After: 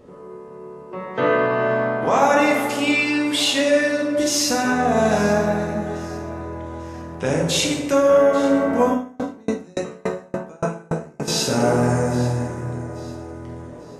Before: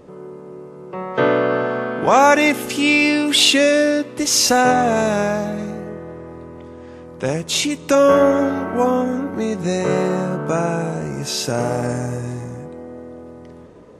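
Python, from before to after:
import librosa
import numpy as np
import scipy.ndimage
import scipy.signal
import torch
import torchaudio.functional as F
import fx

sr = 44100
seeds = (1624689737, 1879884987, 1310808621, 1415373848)

y = fx.rider(x, sr, range_db=4, speed_s=0.5)
y = fx.echo_alternate(y, sr, ms=421, hz=1300.0, feedback_pct=61, wet_db=-13)
y = fx.rev_plate(y, sr, seeds[0], rt60_s=1.5, hf_ratio=0.45, predelay_ms=0, drr_db=-2.0)
y = fx.tremolo_decay(y, sr, direction='decaying', hz=3.5, depth_db=35, at=(8.91, 11.28))
y = y * librosa.db_to_amplitude(-5.5)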